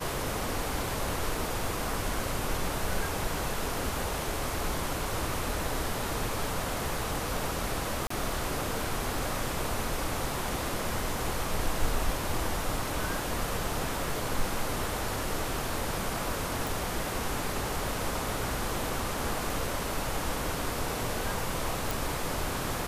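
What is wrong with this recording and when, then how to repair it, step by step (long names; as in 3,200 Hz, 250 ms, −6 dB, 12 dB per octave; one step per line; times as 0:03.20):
0:08.07–0:08.10: drop-out 34 ms
0:16.67: click
0:21.91: click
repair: click removal
repair the gap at 0:08.07, 34 ms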